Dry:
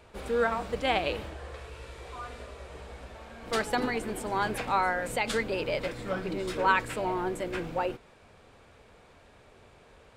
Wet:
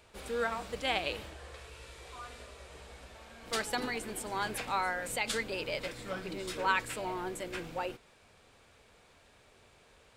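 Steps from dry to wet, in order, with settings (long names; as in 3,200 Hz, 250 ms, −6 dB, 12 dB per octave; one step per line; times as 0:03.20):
high-shelf EQ 2,300 Hz +10 dB
level −7.5 dB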